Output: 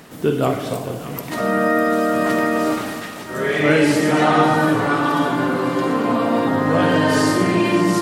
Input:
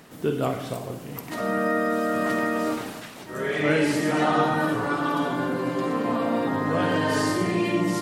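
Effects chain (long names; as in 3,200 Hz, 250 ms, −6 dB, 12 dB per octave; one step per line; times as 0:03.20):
echo with a time of its own for lows and highs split 880 Hz, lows 237 ms, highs 600 ms, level −12 dB
level +6.5 dB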